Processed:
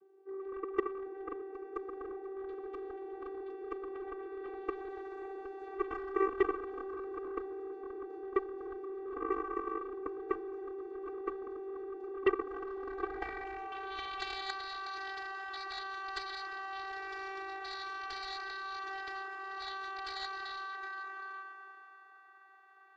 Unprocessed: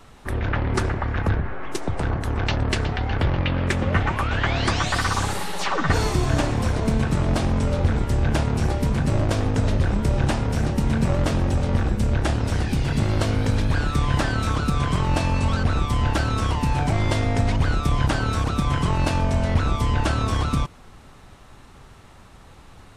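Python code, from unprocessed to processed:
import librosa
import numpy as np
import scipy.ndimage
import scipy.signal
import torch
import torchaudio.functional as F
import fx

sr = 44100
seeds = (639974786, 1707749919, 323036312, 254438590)

p1 = fx.hum_notches(x, sr, base_hz=50, count=7)
p2 = fx.rev_schroeder(p1, sr, rt60_s=3.2, comb_ms=32, drr_db=1.5)
p3 = fx.filter_sweep_bandpass(p2, sr, from_hz=260.0, to_hz=1400.0, start_s=12.07, end_s=14.24, q=3.4)
p4 = fx.vocoder(p3, sr, bands=16, carrier='saw', carrier_hz=387.0)
p5 = p4 + fx.echo_single(p4, sr, ms=766, db=-6.5, dry=0)
p6 = fx.cheby_harmonics(p5, sr, harmonics=(7,), levels_db=(-11,), full_scale_db=-15.5)
y = p6 * librosa.db_to_amplitude(-2.5)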